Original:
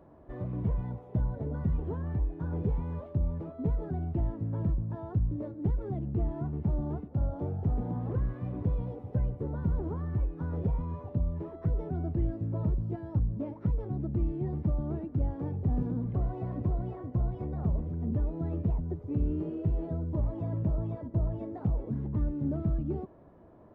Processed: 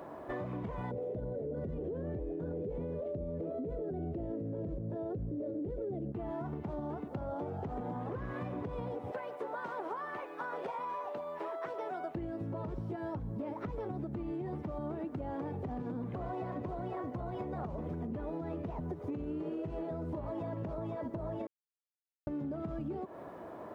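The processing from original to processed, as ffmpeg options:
-filter_complex "[0:a]asettb=1/sr,asplit=3[a][b][c];[a]atrim=end=0.914[d];[b]atrim=start=0.91:end=6.12,asetpts=PTS-STARTPTS,afade=t=in:d=0.004:c=qsin,afade=t=out:st=5.206:d=0.004:c=qsin,lowshelf=f=700:t=q:w=3:g=11[e];[c]atrim=start=6.116[f];[d][e]acrossfade=d=0.004:c1=hsin:c2=qsin[g];[g][f]acrossfade=d=0.004:c1=qsin:c2=hsin,asettb=1/sr,asplit=3[h][i][j];[h]atrim=end=9.124[k];[i]atrim=start=9.12:end=12.15,asetpts=PTS-STARTPTS,afade=t=in:d=0.004:c=qsin,afade=t=out:st=3.026:d=0.004:c=qsin,highpass=670[l];[j]atrim=start=12.146[m];[k][l]acrossfade=d=0.004:c1=hsin:c2=qsin[n];[n][m]acrossfade=d=0.004:c1=qsin:c2=hsin,asplit=3[o][p][q];[o]atrim=end=21.47,asetpts=PTS-STARTPTS,afade=t=out:st=21.466:d=0.004:c=hsin[r];[p]atrim=start=21.47:end=22.27,asetpts=PTS-STARTPTS,volume=0[s];[q]atrim=start=22.27,asetpts=PTS-STARTPTS,afade=t=in:d=0.004:c=hsin[t];[r][s][t]concat=n=3:v=0:a=1,highpass=f=790:p=1,alimiter=level_in=16dB:limit=-24dB:level=0:latency=1:release=126,volume=-16dB,acompressor=threshold=-52dB:ratio=6,volume=16.5dB"

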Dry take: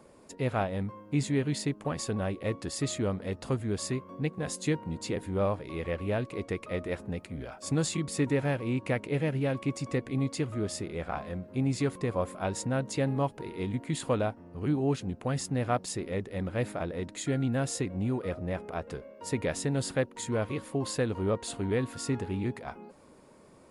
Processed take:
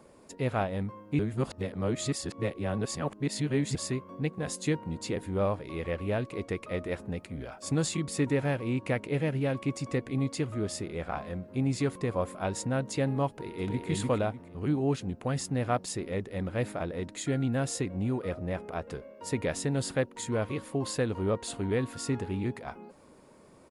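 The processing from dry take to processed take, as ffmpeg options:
-filter_complex "[0:a]asplit=2[a][b];[b]afade=t=in:st=13.28:d=0.01,afade=t=out:st=13.88:d=0.01,aecho=0:1:300|600|900|1200:0.891251|0.222813|0.0557032|0.0139258[c];[a][c]amix=inputs=2:normalize=0,asplit=3[d][e][f];[d]atrim=end=1.192[g];[e]atrim=start=1.188:end=3.752,asetpts=PTS-STARTPTS,areverse[h];[f]atrim=start=3.748[i];[g][h]acrossfade=d=0.004:c1=hsin:c2=hsin[j];[j][i]acrossfade=d=0.004:c1=hsin:c2=hsin"

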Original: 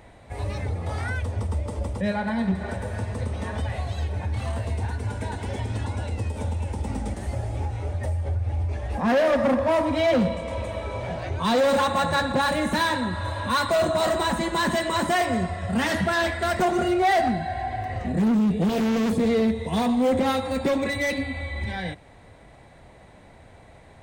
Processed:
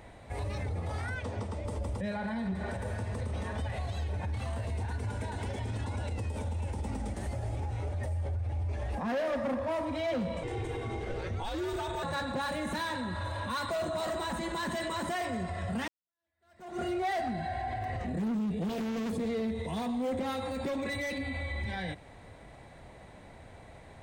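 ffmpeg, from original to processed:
-filter_complex "[0:a]asettb=1/sr,asplit=3[a][b][c];[a]atrim=end=1.154[d];[b]atrim=start=1.15:end=1.65,asetpts=PTS-STARTPTS,afade=t=in:d=0.004:c=qsin,afade=t=out:st=0.496:d=0.004:c=qsin,highpass=140,lowpass=7.1k[e];[c]atrim=start=1.646[f];[d][e]acrossfade=d=0.004:c1=hsin:c2=qsin[g];[g][f]acrossfade=d=0.004:c1=qsin:c2=hsin,asettb=1/sr,asplit=3[h][i][j];[h]atrim=end=10.434[k];[i]atrim=start=10.43:end=12.03,asetpts=PTS-STARTPTS,afade=t=in:d=0.004:c=qsin,afade=t=out:st=1.596:d=0.004:c=qsin,afreqshift=-180[l];[j]atrim=start=12.026[m];[k][l]acrossfade=d=0.004:c1=hsin:c2=qsin[n];[n][m]acrossfade=d=0.004:c1=qsin:c2=hsin,asplit=2[o][p];[o]atrim=end=15.88,asetpts=PTS-STARTPTS,afade=t=out:st=15.876:d=0.004:c=hsin[q];[p]atrim=start=15.88,asetpts=PTS-STARTPTS,afade=t=in:d=1.01:c=exp[r];[q][r]concat=n=2:v=0:a=1,alimiter=level_in=2dB:limit=-24dB:level=0:latency=1:release=60,volume=-2dB,volume=-1.5dB"

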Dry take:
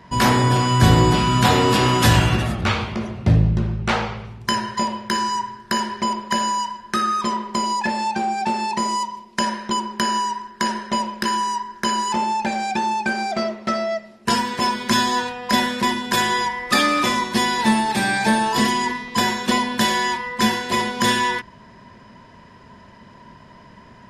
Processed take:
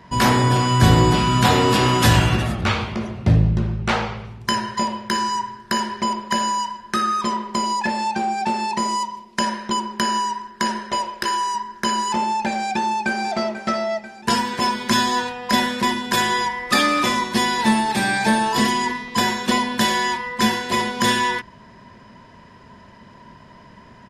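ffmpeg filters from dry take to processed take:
-filter_complex "[0:a]asettb=1/sr,asplit=3[a][b][c];[a]atrim=end=10.914[d];[b]atrim=start=10.91:end=11.55,asetpts=PTS-STARTPTS,afade=t=in:d=0.004:c=qsin,afade=t=out:st=0.636:d=0.004:c=qsin,equalizer=f=210:w=3:g=-14[e];[c]atrim=start=11.546[f];[d][e]acrossfade=d=0.004:c1=hsin:c2=qsin[g];[g][f]acrossfade=d=0.004:c1=qsin:c2=hsin,asplit=2[h][i];[i]afade=t=in:st=12.56:d=0.01,afade=t=out:st=13.23:d=0.01,aecho=0:1:490|980|1470|1960|2450|2940:0.211349|0.126809|0.0760856|0.0456514|0.0273908|0.0164345[j];[h][j]amix=inputs=2:normalize=0"

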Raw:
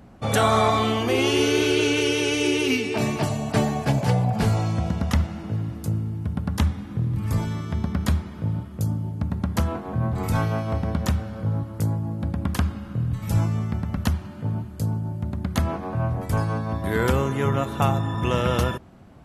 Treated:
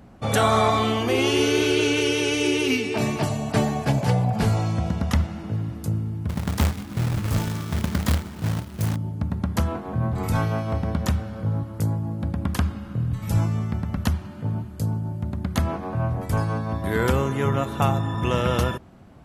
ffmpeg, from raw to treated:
-filter_complex "[0:a]asettb=1/sr,asplit=3[a][b][c];[a]atrim=end=6.294[d];[b]atrim=start=6.29:end=8.96,asetpts=PTS-STARTPTS,afade=t=in:d=0.004:c=qsin,afade=t=out:st=2.666:d=0.004:c=qsin,acrusher=bits=2:mode=log:mix=0:aa=0.000001[e];[c]atrim=start=8.956[f];[d][e]acrossfade=d=0.004:c1=hsin:c2=qsin[g];[g][f]acrossfade=d=0.004:c1=qsin:c2=hsin"

